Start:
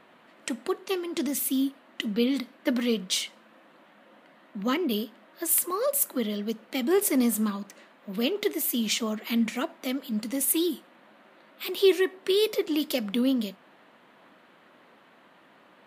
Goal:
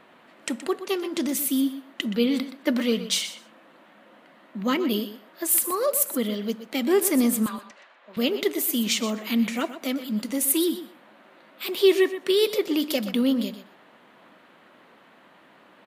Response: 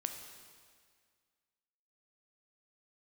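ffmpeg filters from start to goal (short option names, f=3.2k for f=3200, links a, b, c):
-filter_complex "[0:a]asettb=1/sr,asplit=3[a][b][c];[a]atrim=end=7.464[d];[b]atrim=start=7.46:end=8.17,asetpts=PTS-STARTPTS,afade=t=in:d=0.004:c=qsin,afade=t=out:st=0.706:d=0.004:c=qsin,highpass=650,lowpass=4.4k[e];[c]atrim=start=8.166[f];[d][e]acrossfade=d=0.004:c1=hsin:c2=qsin[g];[g][f]acrossfade=d=0.004:c1=qsin:c2=hsin,asplit=2[h][i];[i]aecho=0:1:123|246:0.237|0.0356[j];[h][j]amix=inputs=2:normalize=0,volume=2.5dB"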